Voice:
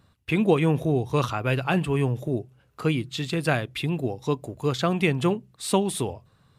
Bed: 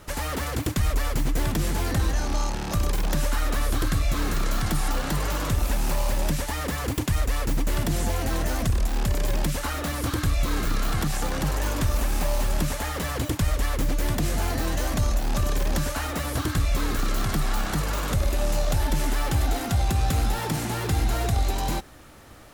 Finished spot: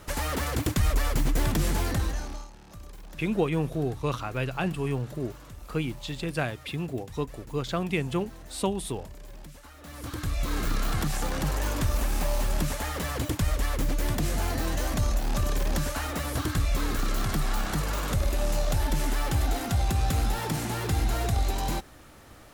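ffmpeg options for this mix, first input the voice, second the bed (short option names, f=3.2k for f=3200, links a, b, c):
-filter_complex "[0:a]adelay=2900,volume=-5.5dB[a];[1:a]volume=17.5dB,afade=t=out:st=1.74:d=0.74:silence=0.1,afade=t=in:st=9.78:d=0.88:silence=0.125893[b];[a][b]amix=inputs=2:normalize=0"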